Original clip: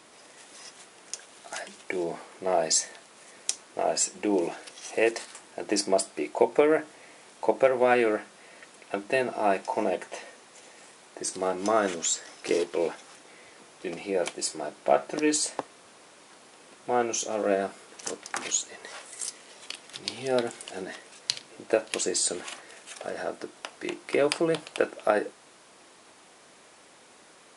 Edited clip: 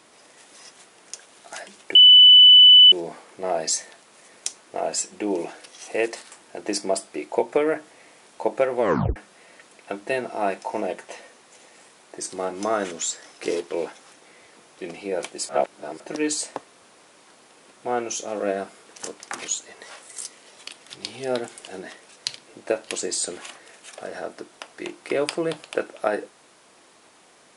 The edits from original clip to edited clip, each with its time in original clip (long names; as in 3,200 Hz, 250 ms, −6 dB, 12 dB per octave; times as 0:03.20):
0:01.95: insert tone 2,990 Hz −6.5 dBFS 0.97 s
0:07.83: tape stop 0.36 s
0:14.52–0:15.03: reverse